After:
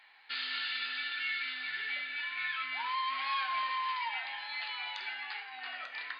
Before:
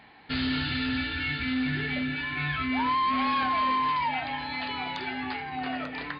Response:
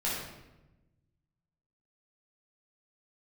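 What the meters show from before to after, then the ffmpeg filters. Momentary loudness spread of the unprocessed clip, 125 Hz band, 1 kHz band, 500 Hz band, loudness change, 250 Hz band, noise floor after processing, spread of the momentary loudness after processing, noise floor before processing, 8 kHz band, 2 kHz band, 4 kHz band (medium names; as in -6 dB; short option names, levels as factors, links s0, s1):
8 LU, under -40 dB, -9.0 dB, -19.0 dB, -6.5 dB, under -35 dB, -50 dBFS, 7 LU, -42 dBFS, no reading, -4.0 dB, -3.0 dB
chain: -filter_complex "[0:a]highpass=1400,asplit=2[s0][s1];[1:a]atrim=start_sample=2205,afade=t=out:st=0.41:d=0.01,atrim=end_sample=18522[s2];[s1][s2]afir=irnorm=-1:irlink=0,volume=0.224[s3];[s0][s3]amix=inputs=2:normalize=0,volume=0.596"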